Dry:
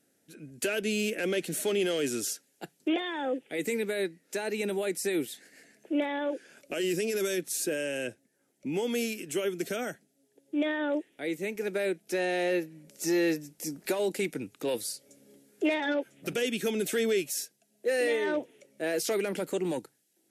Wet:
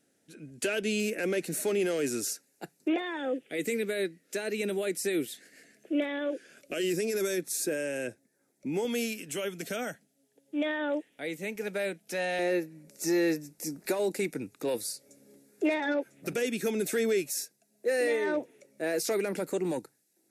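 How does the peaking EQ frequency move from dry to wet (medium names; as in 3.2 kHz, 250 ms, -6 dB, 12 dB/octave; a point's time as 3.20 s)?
peaking EQ -11.5 dB 0.26 oct
13 kHz
from 1.00 s 3.2 kHz
from 3.17 s 890 Hz
from 6.90 s 3 kHz
from 8.85 s 360 Hz
from 12.39 s 3.1 kHz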